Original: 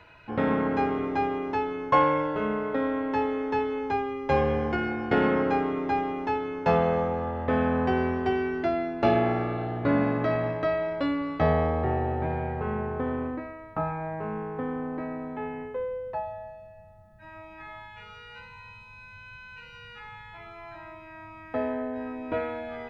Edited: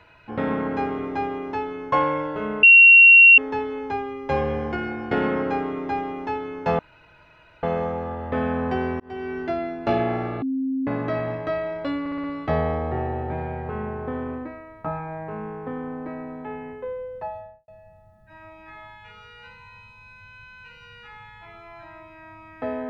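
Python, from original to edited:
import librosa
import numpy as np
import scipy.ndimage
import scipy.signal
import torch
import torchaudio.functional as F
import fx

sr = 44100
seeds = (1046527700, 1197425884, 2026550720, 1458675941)

y = fx.studio_fade_out(x, sr, start_s=16.27, length_s=0.33)
y = fx.edit(y, sr, fx.bleep(start_s=2.63, length_s=0.75, hz=2740.0, db=-6.5),
    fx.insert_room_tone(at_s=6.79, length_s=0.84),
    fx.fade_in_span(start_s=8.16, length_s=0.37),
    fx.bleep(start_s=9.58, length_s=0.45, hz=265.0, db=-22.0),
    fx.stutter(start_s=11.16, slice_s=0.06, count=5), tone=tone)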